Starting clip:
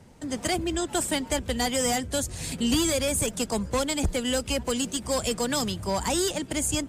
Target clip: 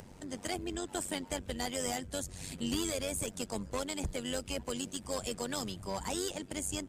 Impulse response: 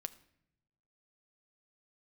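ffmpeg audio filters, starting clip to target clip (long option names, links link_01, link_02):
-af "acompressor=mode=upward:threshold=-32dB:ratio=2.5,tremolo=f=95:d=0.71,volume=-7dB"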